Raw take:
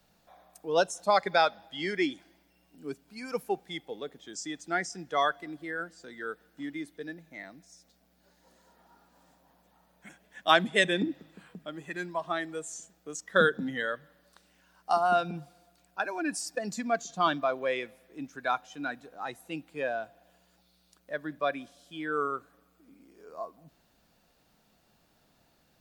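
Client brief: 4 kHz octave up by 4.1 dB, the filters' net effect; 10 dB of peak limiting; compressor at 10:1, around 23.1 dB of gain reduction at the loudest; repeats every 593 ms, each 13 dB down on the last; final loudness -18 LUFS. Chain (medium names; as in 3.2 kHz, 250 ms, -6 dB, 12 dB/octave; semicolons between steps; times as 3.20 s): peaking EQ 4 kHz +5 dB; compression 10:1, threshold -41 dBFS; peak limiter -35.5 dBFS; feedback delay 593 ms, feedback 22%, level -13 dB; trim +30 dB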